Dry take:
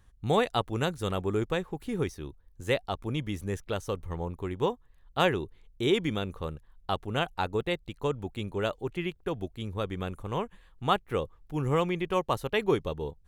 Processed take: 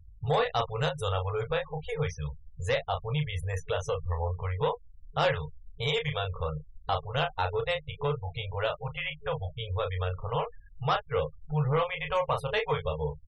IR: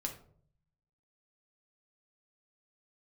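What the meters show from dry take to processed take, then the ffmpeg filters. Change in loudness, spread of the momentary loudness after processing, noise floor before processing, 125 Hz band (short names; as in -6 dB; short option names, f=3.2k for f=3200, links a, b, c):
0.0 dB, 7 LU, -60 dBFS, +2.5 dB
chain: -filter_complex "[0:a]asplit=2[a][b];[b]aecho=0:1:14|33:0.251|0.473[c];[a][c]amix=inputs=2:normalize=0,afftfilt=real='re*(1-between(b*sr/4096,160,420))':imag='im*(1-between(b*sr/4096,160,420))':win_size=4096:overlap=0.75,asplit=2[d][e];[e]acompressor=threshold=-40dB:ratio=6,volume=3dB[f];[d][f]amix=inputs=2:normalize=0,asoftclip=type=tanh:threshold=-19.5dB,aeval=exprs='val(0)+0.001*(sin(2*PI*50*n/s)+sin(2*PI*2*50*n/s)/2+sin(2*PI*3*50*n/s)/3+sin(2*PI*4*50*n/s)/4+sin(2*PI*5*50*n/s)/5)':c=same,asplit=2[g][h];[h]adelay=13,volume=-10dB[i];[g][i]amix=inputs=2:normalize=0,afftfilt=real='re*gte(hypot(re,im),0.0112)':imag='im*gte(hypot(re,im),0.0112)':win_size=1024:overlap=0.75"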